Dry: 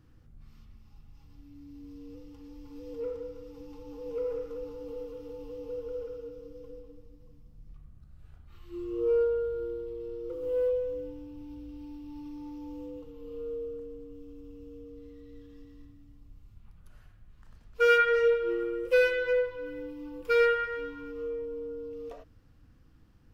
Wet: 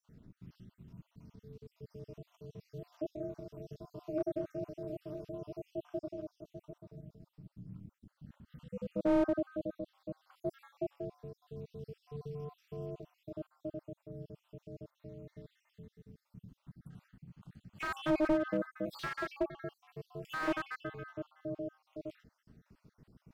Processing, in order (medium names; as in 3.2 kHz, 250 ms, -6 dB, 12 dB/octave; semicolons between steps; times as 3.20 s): random holes in the spectrogram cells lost 56%; ring modulator 150 Hz; slew-rate limiter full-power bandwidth 20 Hz; trim +2.5 dB